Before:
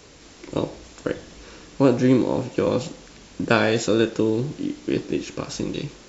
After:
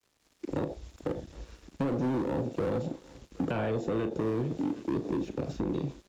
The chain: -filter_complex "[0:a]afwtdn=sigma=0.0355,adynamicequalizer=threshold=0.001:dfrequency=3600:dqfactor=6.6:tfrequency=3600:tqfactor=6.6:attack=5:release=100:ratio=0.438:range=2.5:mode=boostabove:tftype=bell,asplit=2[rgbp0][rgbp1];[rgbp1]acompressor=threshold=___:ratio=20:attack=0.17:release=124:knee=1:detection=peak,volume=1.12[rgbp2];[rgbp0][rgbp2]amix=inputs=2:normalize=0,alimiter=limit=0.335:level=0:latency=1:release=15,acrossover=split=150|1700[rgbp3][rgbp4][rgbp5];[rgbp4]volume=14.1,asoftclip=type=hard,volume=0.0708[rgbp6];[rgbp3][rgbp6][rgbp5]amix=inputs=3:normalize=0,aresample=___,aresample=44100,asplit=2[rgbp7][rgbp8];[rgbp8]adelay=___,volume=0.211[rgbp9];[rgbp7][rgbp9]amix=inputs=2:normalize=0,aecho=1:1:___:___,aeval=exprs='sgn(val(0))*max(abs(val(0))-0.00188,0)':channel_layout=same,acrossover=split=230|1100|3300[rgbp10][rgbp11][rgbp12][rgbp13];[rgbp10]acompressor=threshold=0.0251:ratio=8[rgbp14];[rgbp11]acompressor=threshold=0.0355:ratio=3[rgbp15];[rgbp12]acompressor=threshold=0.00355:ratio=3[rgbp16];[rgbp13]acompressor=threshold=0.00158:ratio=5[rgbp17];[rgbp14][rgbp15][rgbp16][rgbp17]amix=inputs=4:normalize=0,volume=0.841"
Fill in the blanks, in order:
0.0282, 32000, 36, 767, 0.075